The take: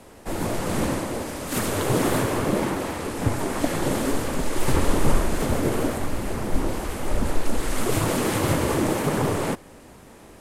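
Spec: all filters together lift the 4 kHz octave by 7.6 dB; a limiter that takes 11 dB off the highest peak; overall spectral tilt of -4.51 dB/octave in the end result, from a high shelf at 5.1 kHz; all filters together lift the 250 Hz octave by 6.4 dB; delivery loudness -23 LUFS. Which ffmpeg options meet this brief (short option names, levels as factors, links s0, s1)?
-af "equalizer=f=250:t=o:g=8,equalizer=f=4000:t=o:g=6.5,highshelf=f=5100:g=7,volume=1.19,alimiter=limit=0.237:level=0:latency=1"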